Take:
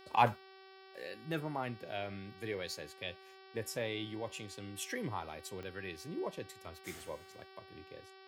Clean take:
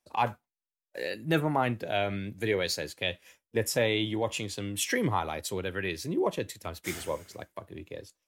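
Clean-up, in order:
click removal
hum removal 382.8 Hz, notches 14
level correction +11.5 dB, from 0:00.95

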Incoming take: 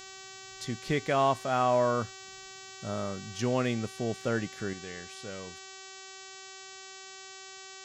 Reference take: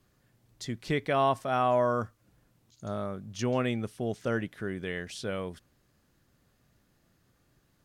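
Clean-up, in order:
hum removal 382.7 Hz, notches 20
level 0 dB, from 0:04.73 +8 dB

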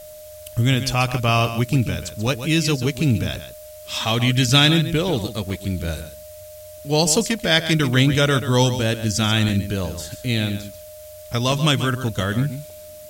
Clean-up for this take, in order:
notch filter 610 Hz, Q 30
repair the gap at 0:01.14/0:02.27/0:05.50/0:07.39/0:09.49/0:11.52/0:12.20/0:12.70, 2.8 ms
broadband denoise 26 dB, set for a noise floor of −40 dBFS
echo removal 136 ms −11 dB

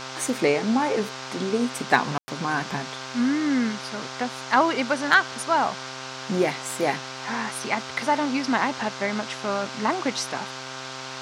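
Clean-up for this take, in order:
clipped peaks rebuilt −5 dBFS
hum removal 131.5 Hz, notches 12
ambience match 0:02.18–0:02.28
noise reduction from a noise print 30 dB

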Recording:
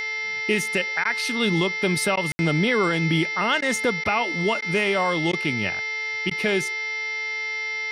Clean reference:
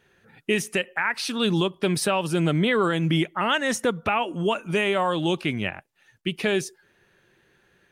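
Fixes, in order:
hum removal 438.4 Hz, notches 13
notch filter 2,100 Hz, Q 30
ambience match 0:02.32–0:02.39
repair the gap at 0:01.04/0:02.16/0:03.61/0:04.04/0:04.61/0:05.32/0:06.30, 10 ms

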